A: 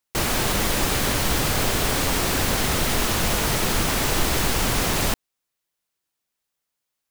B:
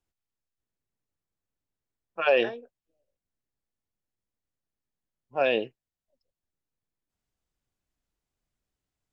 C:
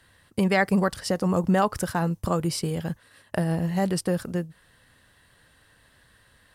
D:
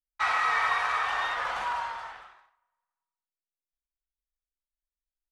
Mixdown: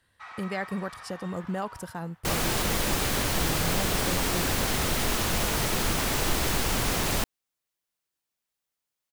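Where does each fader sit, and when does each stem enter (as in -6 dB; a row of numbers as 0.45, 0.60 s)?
-4.5 dB, off, -10.5 dB, -17.5 dB; 2.10 s, off, 0.00 s, 0.00 s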